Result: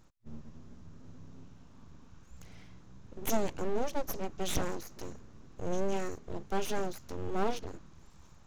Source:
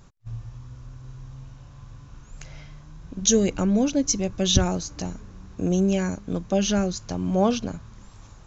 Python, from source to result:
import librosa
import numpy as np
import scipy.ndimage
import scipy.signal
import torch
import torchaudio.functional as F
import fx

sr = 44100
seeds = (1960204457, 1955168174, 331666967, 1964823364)

y = fx.hpss(x, sr, part='percussive', gain_db=-5)
y = np.abs(y)
y = y * librosa.db_to_amplitude(-7.0)